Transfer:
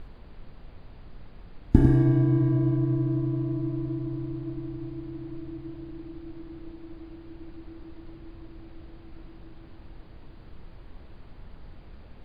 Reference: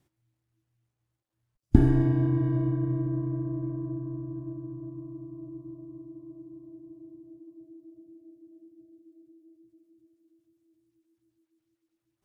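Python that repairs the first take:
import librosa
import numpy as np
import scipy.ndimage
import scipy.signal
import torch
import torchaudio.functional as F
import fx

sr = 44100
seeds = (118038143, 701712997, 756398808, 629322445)

y = fx.noise_reduce(x, sr, print_start_s=10.01, print_end_s=10.51, reduce_db=30.0)
y = fx.fix_echo_inverse(y, sr, delay_ms=99, level_db=-6.5)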